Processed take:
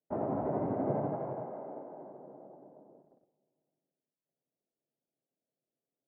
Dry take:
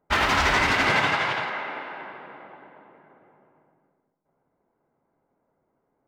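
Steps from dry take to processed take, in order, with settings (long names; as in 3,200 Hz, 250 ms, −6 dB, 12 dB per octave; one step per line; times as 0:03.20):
elliptic band-pass filter 120–660 Hz, stop band 80 dB
noise gate −56 dBFS, range −17 dB
level −2.5 dB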